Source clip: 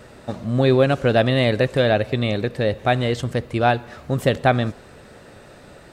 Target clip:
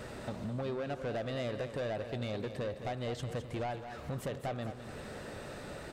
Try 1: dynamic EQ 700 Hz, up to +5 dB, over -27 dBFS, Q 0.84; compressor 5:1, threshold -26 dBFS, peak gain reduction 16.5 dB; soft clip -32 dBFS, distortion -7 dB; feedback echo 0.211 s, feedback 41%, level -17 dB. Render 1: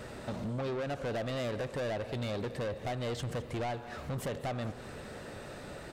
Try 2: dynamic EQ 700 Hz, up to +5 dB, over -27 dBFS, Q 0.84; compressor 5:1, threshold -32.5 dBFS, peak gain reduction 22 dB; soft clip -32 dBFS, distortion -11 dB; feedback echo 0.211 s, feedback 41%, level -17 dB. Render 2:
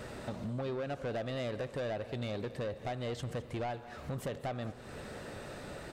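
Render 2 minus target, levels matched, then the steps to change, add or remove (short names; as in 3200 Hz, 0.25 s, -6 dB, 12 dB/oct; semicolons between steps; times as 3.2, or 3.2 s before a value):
echo-to-direct -7 dB
change: feedback echo 0.211 s, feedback 41%, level -10 dB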